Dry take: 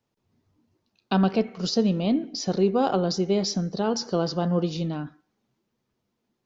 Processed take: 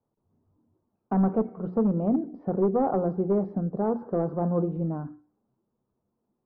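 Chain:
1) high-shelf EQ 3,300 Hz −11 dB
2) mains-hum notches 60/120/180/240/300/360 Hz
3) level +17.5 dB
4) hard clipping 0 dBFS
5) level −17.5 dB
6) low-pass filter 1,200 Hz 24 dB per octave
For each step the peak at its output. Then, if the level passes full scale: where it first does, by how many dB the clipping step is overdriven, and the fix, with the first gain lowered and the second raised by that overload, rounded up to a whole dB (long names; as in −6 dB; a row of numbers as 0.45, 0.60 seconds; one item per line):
−10.0, −9.5, +8.0, 0.0, −17.5, −16.0 dBFS
step 3, 8.0 dB
step 3 +9.5 dB, step 5 −9.5 dB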